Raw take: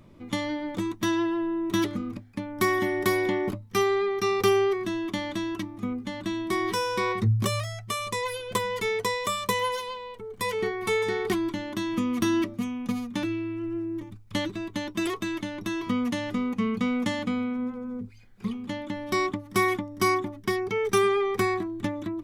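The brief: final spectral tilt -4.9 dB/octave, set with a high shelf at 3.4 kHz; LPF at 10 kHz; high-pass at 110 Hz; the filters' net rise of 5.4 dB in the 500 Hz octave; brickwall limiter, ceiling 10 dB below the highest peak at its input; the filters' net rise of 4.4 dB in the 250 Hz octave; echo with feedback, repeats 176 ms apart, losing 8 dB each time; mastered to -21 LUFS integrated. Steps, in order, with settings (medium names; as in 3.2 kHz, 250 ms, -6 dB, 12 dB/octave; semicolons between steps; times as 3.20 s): high-pass 110 Hz; low-pass 10 kHz; peaking EQ 250 Hz +3.5 dB; peaking EQ 500 Hz +6 dB; treble shelf 3.4 kHz -3.5 dB; peak limiter -17.5 dBFS; feedback delay 176 ms, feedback 40%, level -8 dB; trim +5 dB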